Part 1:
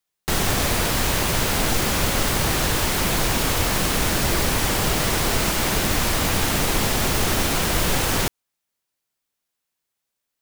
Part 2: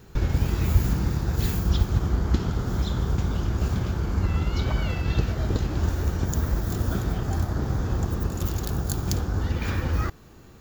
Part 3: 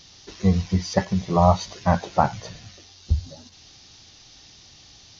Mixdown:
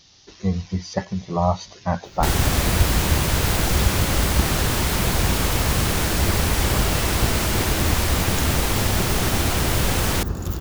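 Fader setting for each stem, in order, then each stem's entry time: -1.5 dB, +0.5 dB, -3.5 dB; 1.95 s, 2.05 s, 0.00 s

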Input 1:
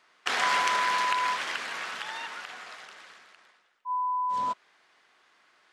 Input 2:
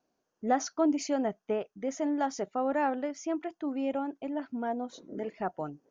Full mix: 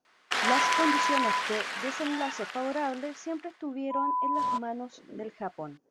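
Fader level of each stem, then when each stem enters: 0.0 dB, -2.5 dB; 0.05 s, 0.00 s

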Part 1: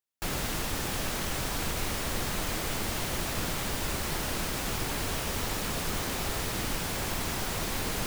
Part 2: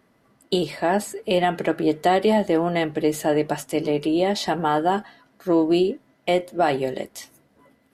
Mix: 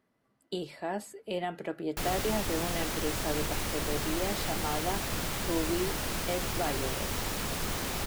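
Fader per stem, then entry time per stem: -1.5 dB, -13.5 dB; 1.75 s, 0.00 s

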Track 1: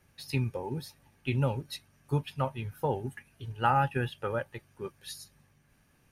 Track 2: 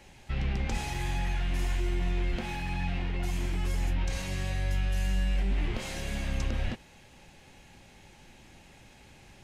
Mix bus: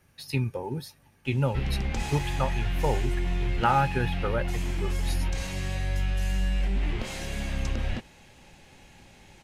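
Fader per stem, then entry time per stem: +2.5 dB, +1.5 dB; 0.00 s, 1.25 s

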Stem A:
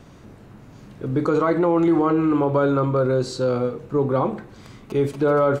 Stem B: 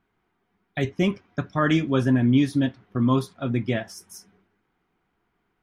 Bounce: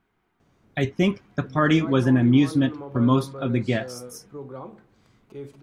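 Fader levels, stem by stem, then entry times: -17.0 dB, +1.5 dB; 0.40 s, 0.00 s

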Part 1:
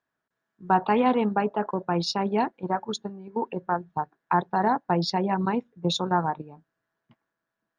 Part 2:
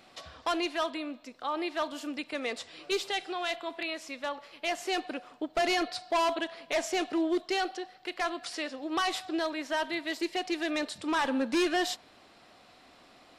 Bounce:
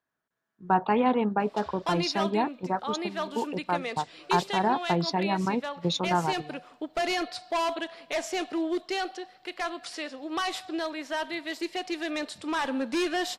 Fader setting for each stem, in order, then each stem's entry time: -2.0 dB, -0.5 dB; 0.00 s, 1.40 s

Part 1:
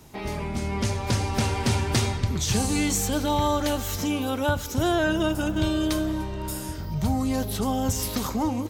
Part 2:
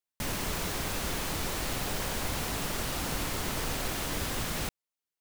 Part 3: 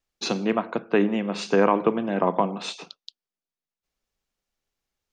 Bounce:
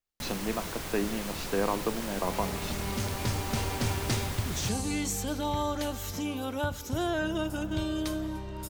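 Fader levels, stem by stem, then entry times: -7.0 dB, -4.5 dB, -9.5 dB; 2.15 s, 0.00 s, 0.00 s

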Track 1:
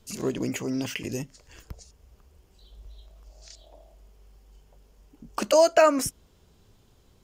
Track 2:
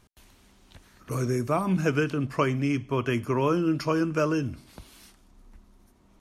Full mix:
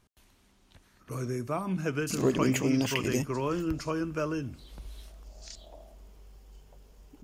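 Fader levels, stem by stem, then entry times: +2.0 dB, -6.5 dB; 2.00 s, 0.00 s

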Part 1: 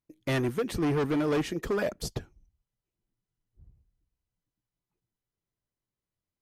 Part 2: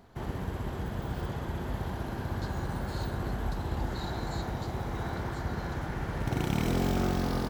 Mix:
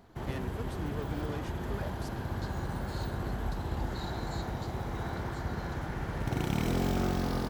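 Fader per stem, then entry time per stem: -13.5 dB, -1.5 dB; 0.00 s, 0.00 s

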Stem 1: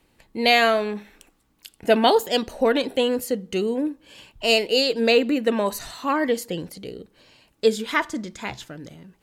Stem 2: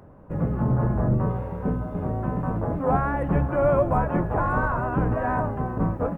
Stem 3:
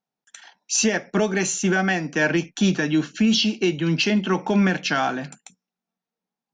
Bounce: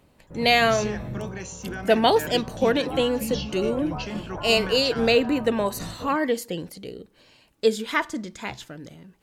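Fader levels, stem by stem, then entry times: -1.5 dB, -12.0 dB, -14.0 dB; 0.00 s, 0.00 s, 0.00 s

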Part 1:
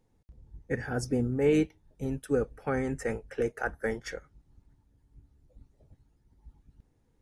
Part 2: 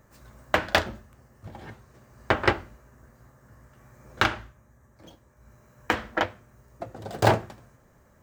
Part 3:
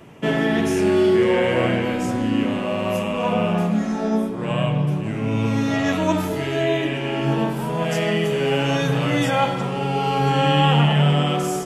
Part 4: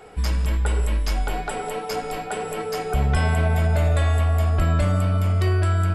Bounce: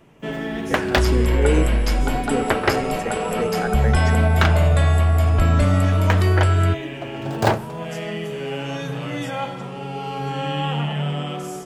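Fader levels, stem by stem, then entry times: +3.0 dB, +1.5 dB, -7.5 dB, +3.0 dB; 0.00 s, 0.20 s, 0.00 s, 0.80 s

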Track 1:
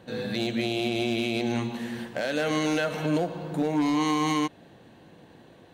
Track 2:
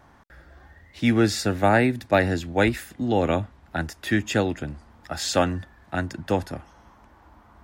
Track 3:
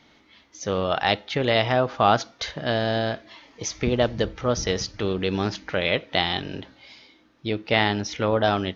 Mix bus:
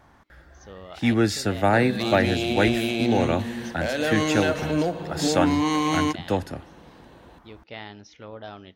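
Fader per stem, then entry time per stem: +2.0 dB, -1.0 dB, -18.0 dB; 1.65 s, 0.00 s, 0.00 s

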